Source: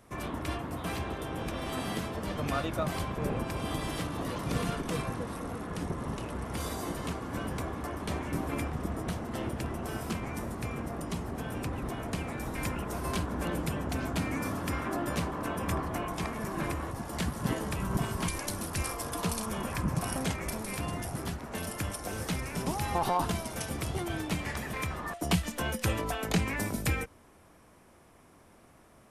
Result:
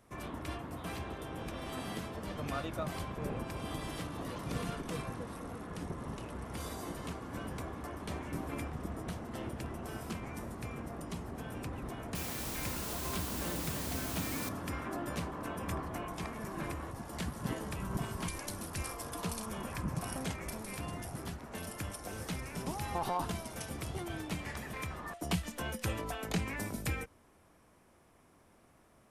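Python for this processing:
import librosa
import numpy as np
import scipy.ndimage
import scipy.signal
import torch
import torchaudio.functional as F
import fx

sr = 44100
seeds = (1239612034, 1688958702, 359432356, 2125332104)

y = fx.quant_dither(x, sr, seeds[0], bits=6, dither='triangular', at=(12.15, 14.49))
y = F.gain(torch.from_numpy(y), -6.0).numpy()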